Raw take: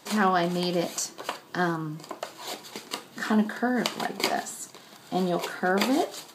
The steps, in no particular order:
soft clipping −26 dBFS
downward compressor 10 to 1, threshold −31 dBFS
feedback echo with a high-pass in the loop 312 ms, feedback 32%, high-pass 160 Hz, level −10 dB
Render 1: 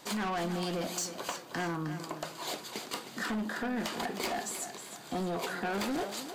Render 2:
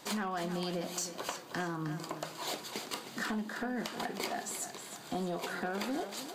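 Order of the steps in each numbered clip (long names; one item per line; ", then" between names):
soft clipping, then downward compressor, then feedback echo with a high-pass in the loop
downward compressor, then soft clipping, then feedback echo with a high-pass in the loop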